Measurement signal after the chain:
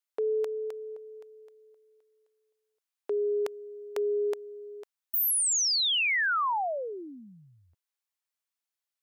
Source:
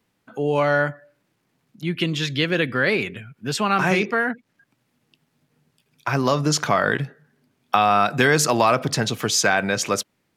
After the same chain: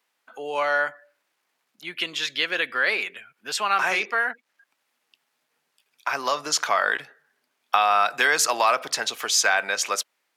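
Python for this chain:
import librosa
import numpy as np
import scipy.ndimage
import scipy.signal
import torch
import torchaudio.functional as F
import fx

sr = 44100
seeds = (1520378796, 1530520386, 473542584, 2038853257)

y = scipy.signal.sosfilt(scipy.signal.butter(2, 760.0, 'highpass', fs=sr, output='sos'), x)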